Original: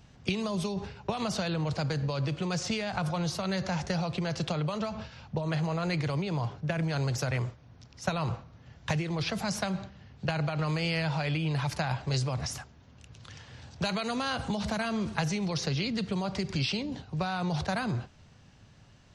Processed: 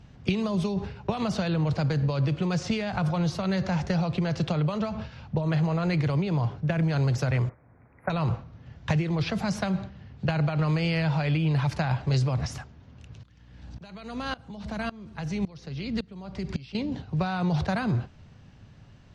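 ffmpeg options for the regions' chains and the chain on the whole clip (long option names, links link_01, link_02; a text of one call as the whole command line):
ffmpeg -i in.wav -filter_complex "[0:a]asettb=1/sr,asplit=3[link_01][link_02][link_03];[link_01]atrim=end=7.494[link_04];[link_02]atrim=start=7.49:end=8.1,asetpts=PTS-STARTPTS,afade=type=in:duration=0.004:curve=qsin,afade=type=out:start_time=0.606:duration=0.004:curve=qsin,asuperstop=centerf=5200:order=20:qfactor=0.66,bass=frequency=250:gain=-11,treble=frequency=4000:gain=-10[link_05];[link_03]atrim=start=8.096[link_06];[link_04][link_05]acrossfade=duration=0.004:curve1=hsin:curve2=qsin[link_07];[link_07][link_06]acrossfade=duration=0.004:curve1=qsin:curve2=hsin,asettb=1/sr,asplit=3[link_08][link_09][link_10];[link_08]atrim=end=13.234[link_11];[link_09]atrim=start=13.23:end=16.75,asetpts=PTS-STARTPTS,afade=type=in:duration=0.004:curve=qsin,afade=type=out:start_time=3.516:duration=0.004:curve=qsin,aeval=exprs='val(0)+0.00562*(sin(2*PI*60*n/s)+sin(2*PI*2*60*n/s)/2+sin(2*PI*3*60*n/s)/3+sin(2*PI*4*60*n/s)/4+sin(2*PI*5*60*n/s)/5)':channel_layout=same,aeval=exprs='val(0)*pow(10,-22*if(lt(mod(-1.8*n/s,1),2*abs(-1.8)/1000),1-mod(-1.8*n/s,1)/(2*abs(-1.8)/1000),(mod(-1.8*n/s,1)-2*abs(-1.8)/1000)/(1-2*abs(-1.8)/1000))/20)':channel_layout=same[link_12];[link_10]atrim=start=16.746[link_13];[link_11][link_12]acrossfade=duration=0.004:curve1=hsin:curve2=qsin[link_14];[link_14][link_13]acrossfade=duration=0.004:curve1=qsin:curve2=hsin,lowpass=frequency=1900:poles=1,equalizer=frequency=810:width_type=o:width=2.7:gain=-4,volume=6.5dB" out.wav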